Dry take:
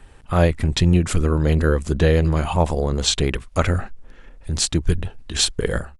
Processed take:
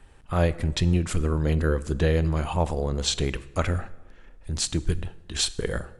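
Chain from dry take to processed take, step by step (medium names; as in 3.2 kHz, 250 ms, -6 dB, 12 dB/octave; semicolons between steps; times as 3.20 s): plate-style reverb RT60 1.1 s, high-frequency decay 0.7×, DRR 15.5 dB; trim -6 dB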